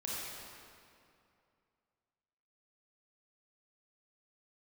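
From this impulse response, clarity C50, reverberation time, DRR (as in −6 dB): −4.0 dB, 2.5 s, −6.5 dB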